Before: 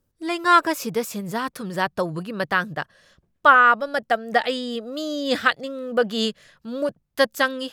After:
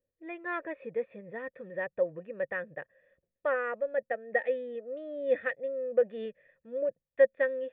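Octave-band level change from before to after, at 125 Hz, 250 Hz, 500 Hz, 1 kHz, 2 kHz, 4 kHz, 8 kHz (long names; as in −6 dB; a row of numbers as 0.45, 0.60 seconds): below −15 dB, −17.5 dB, −4.0 dB, −21.5 dB, −14.5 dB, below −30 dB, can't be measured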